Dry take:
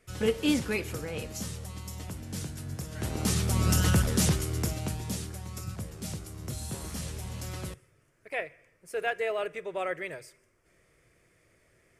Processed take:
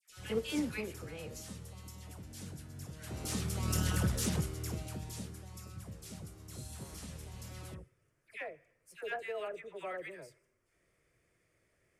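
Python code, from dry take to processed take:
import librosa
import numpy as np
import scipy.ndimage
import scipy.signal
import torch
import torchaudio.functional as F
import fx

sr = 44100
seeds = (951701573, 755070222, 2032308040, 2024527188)

y = fx.dispersion(x, sr, late='lows', ms=97.0, hz=1300.0)
y = fx.cheby_harmonics(y, sr, harmonics=(7,), levels_db=(-30,), full_scale_db=-10.0)
y = y * 10.0 ** (-7.0 / 20.0)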